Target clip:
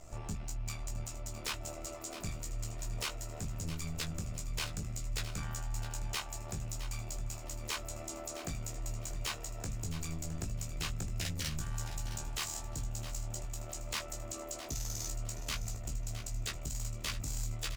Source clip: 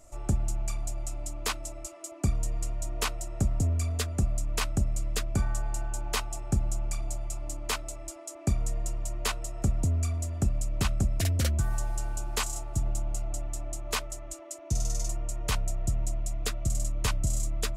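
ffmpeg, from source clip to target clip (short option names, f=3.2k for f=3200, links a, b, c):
-filter_complex "[0:a]lowpass=5.9k,highshelf=f=2.2k:g=4,bandreject=f=50:t=h:w=6,bandreject=f=100:t=h:w=6,bandreject=f=150:t=h:w=6,bandreject=f=200:t=h:w=6,acrossover=split=1500[a][b];[a]acompressor=threshold=-36dB:ratio=4[c];[c][b]amix=inputs=2:normalize=0,asoftclip=type=tanh:threshold=-34.5dB,tremolo=f=77:d=0.824,asplit=3[d][e][f];[e]asetrate=29433,aresample=44100,atempo=1.49831,volume=-17dB[g];[f]asetrate=88200,aresample=44100,atempo=0.5,volume=-14dB[h];[d][g][h]amix=inputs=3:normalize=0,asplit=2[i][j];[j]adelay=19,volume=-6dB[k];[i][k]amix=inputs=2:normalize=0,aecho=1:1:663|1326|1989:0.266|0.0745|0.0209,volume=4dB"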